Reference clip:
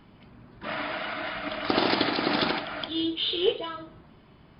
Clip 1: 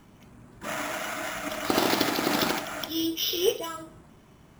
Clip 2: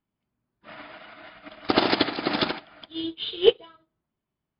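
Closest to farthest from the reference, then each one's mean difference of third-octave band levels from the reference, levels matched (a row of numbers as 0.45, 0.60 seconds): 1, 2; 6.5, 9.5 decibels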